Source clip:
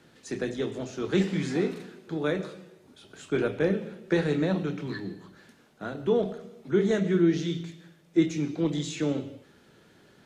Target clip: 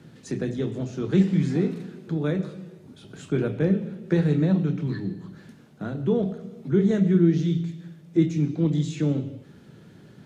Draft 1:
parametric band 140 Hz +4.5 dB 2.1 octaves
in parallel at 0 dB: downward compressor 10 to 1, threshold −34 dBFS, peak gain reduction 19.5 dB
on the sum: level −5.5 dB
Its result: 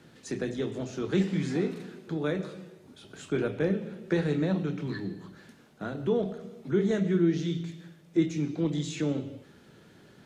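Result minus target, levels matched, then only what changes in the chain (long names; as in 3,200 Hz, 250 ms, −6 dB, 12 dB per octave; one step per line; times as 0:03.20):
125 Hz band −3.0 dB
change: parametric band 140 Hz +14.5 dB 2.1 octaves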